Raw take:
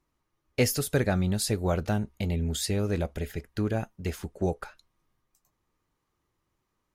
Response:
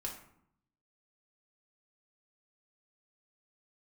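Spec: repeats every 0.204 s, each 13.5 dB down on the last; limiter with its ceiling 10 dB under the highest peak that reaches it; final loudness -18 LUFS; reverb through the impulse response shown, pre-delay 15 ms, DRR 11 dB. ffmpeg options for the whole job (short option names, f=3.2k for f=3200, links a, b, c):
-filter_complex "[0:a]alimiter=limit=-20dB:level=0:latency=1,aecho=1:1:204|408:0.211|0.0444,asplit=2[a][b];[1:a]atrim=start_sample=2205,adelay=15[c];[b][c]afir=irnorm=-1:irlink=0,volume=-10.5dB[d];[a][d]amix=inputs=2:normalize=0,volume=13.5dB"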